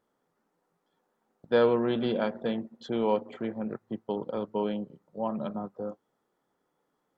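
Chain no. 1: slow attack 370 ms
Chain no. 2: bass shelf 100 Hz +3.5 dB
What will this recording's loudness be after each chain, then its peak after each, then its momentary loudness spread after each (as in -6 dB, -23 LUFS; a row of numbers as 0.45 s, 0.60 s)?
-34.5 LUFS, -30.5 LUFS; -16.5 dBFS, -11.0 dBFS; 17 LU, 13 LU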